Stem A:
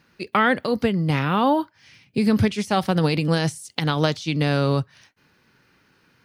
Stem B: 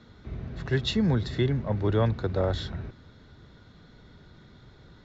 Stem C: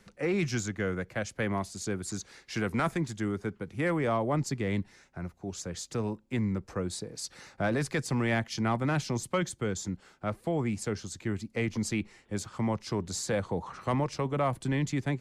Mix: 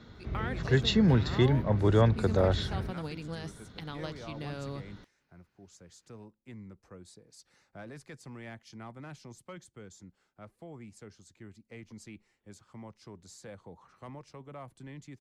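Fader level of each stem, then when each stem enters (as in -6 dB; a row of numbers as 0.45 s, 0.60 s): -19.0 dB, +1.0 dB, -17.0 dB; 0.00 s, 0.00 s, 0.15 s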